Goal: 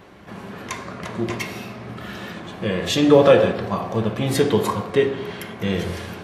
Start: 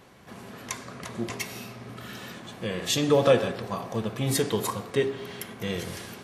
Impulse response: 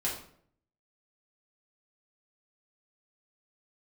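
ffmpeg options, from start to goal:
-filter_complex "[0:a]equalizer=f=12000:t=o:w=2:g=-7,asplit=2[s0][s1];[1:a]atrim=start_sample=2205,lowpass=4700[s2];[s1][s2]afir=irnorm=-1:irlink=0,volume=0.398[s3];[s0][s3]amix=inputs=2:normalize=0,volume=1.68"

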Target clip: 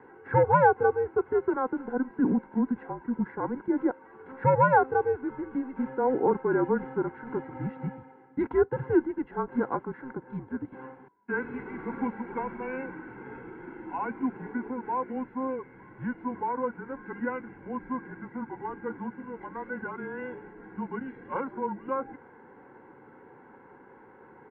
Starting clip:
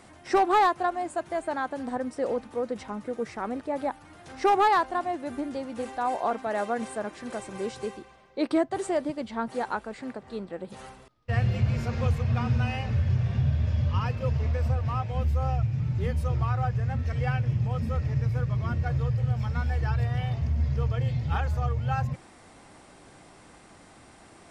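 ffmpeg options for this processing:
-af "aecho=1:1:1.7:0.97,highpass=f=380:t=q:w=0.5412,highpass=f=380:t=q:w=1.307,lowpass=f=2100:t=q:w=0.5176,lowpass=f=2100:t=q:w=0.7071,lowpass=f=2100:t=q:w=1.932,afreqshift=-260"

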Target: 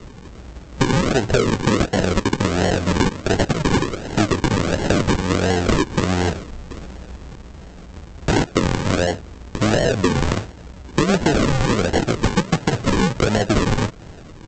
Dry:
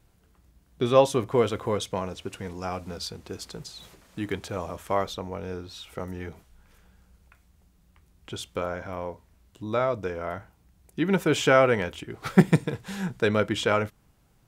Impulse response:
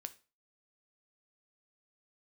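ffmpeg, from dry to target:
-filter_complex "[0:a]highshelf=f=2800:t=q:w=3:g=10,acompressor=threshold=0.0447:ratio=8,apsyclip=14.1,aresample=16000,acrusher=samples=19:mix=1:aa=0.000001:lfo=1:lforange=11.4:lforate=1.4,aresample=44100,acrossover=split=500|2800[s0][s1][s2];[s0]acompressor=threshold=0.158:ratio=4[s3];[s1]acompressor=threshold=0.0891:ratio=4[s4];[s2]acompressor=threshold=0.0398:ratio=4[s5];[s3][s4][s5]amix=inputs=3:normalize=0,volume=0.891"

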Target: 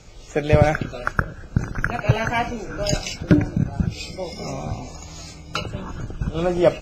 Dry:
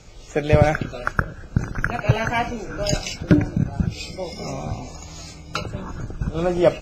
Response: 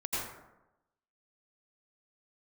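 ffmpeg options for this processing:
-filter_complex "[0:a]asettb=1/sr,asplit=3[s0][s1][s2];[s0]atrim=end=5.574[s3];[s1]atrim=start=5.57:end=6.46,asetpts=PTS-STARTPTS,afade=t=in:d=0.004:c=qsin,afade=t=out:st=0.886:d=0.004:c=qsin,equalizer=f=3000:t=o:w=0.3:g=8[s4];[s2]atrim=start=6.456[s5];[s3][s4]acrossfade=d=0.004:c1=hsin:c2=qsin[s6];[s6][s5]acrossfade=d=0.004:c1=qsin:c2=hsin"

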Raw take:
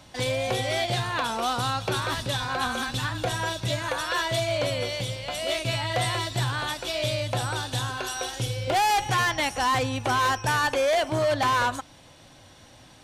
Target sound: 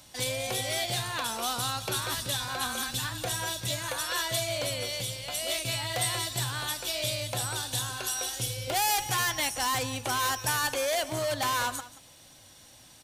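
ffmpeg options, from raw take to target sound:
-filter_complex "[0:a]aemphasis=mode=production:type=75fm,asplit=2[s0][s1];[s1]aecho=0:1:180:0.15[s2];[s0][s2]amix=inputs=2:normalize=0,volume=0.473"

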